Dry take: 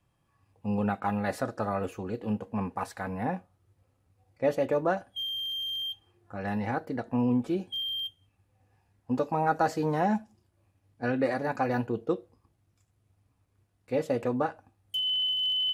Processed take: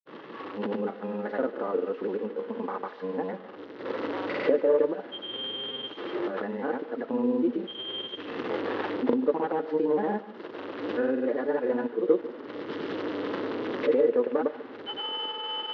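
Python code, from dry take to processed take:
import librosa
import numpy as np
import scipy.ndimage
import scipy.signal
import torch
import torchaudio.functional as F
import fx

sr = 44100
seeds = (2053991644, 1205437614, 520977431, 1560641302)

y = fx.delta_mod(x, sr, bps=32000, step_db=-40.0)
y = fx.recorder_agc(y, sr, target_db=-23.5, rise_db_per_s=28.0, max_gain_db=30)
y = fx.low_shelf(y, sr, hz=390.0, db=9.5)
y = fx.granulator(y, sr, seeds[0], grain_ms=100.0, per_s=20.0, spray_ms=100.0, spread_st=0)
y = fx.cabinet(y, sr, low_hz=290.0, low_slope=24, high_hz=2900.0, hz=(450.0, 730.0, 2400.0), db=(6, -7, -8))
y = y + 10.0 ** (-17.0 / 20.0) * np.pad(y, (int(146 * sr / 1000.0), 0))[:len(y)]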